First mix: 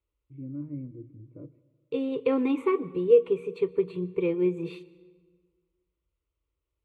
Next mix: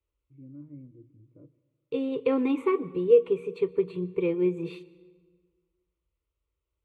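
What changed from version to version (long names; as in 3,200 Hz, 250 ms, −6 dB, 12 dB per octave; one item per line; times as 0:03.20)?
first voice −8.5 dB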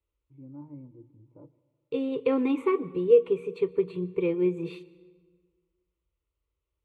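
first voice: remove phaser with its sweep stopped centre 2,100 Hz, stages 4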